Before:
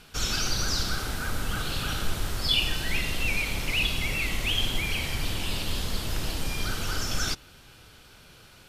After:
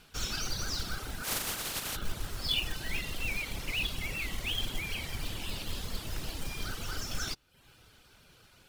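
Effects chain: 1.23–1.95 s: spectral contrast reduction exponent 0.29; reverb removal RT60 0.58 s; short-mantissa float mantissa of 2-bit; trim -6 dB

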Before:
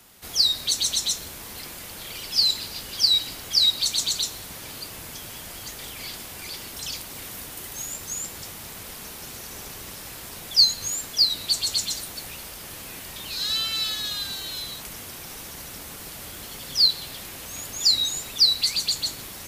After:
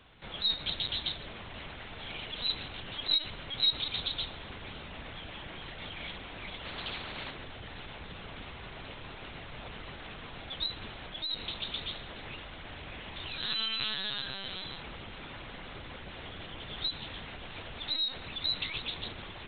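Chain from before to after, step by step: LPC vocoder at 8 kHz pitch kept; 6.65–7.31 s: spectrum-flattening compressor 2:1; trim -1.5 dB

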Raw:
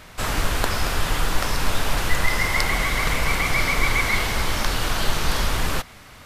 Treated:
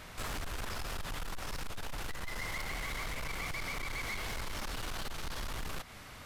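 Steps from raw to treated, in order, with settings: compression 6:1, threshold -25 dBFS, peak gain reduction 13.5 dB; saturation -29.5 dBFS, distortion -10 dB; trim -4.5 dB

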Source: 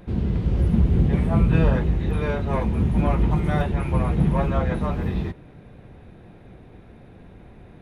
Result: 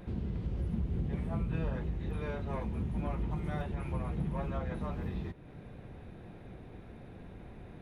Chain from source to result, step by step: compression 2:1, threshold -38 dBFS, peak gain reduction 14 dB; trim -3 dB

